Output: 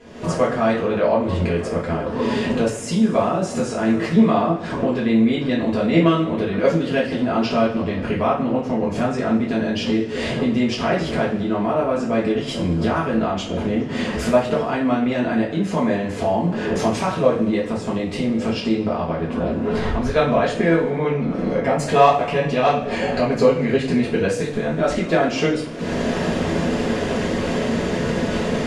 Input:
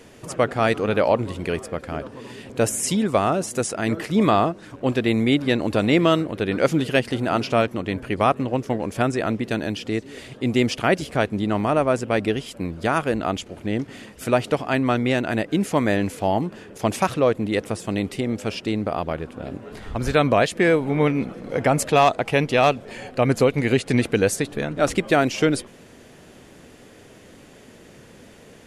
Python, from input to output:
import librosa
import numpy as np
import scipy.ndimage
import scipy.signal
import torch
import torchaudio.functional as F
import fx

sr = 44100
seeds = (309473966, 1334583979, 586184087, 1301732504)

p1 = fx.recorder_agc(x, sr, target_db=-13.0, rise_db_per_s=69.0, max_gain_db=30)
p2 = scipy.signal.sosfilt(scipy.signal.butter(2, 6400.0, 'lowpass', fs=sr, output='sos'), p1)
p3 = fx.high_shelf(p2, sr, hz=2100.0, db=-7.5)
p4 = fx.level_steps(p3, sr, step_db=16)
p5 = p3 + (p4 * 10.0 ** (-1.0 / 20.0))
p6 = fx.rev_double_slope(p5, sr, seeds[0], early_s=0.38, late_s=1.8, knee_db=-18, drr_db=-6.5)
y = p6 * 10.0 ** (-8.5 / 20.0)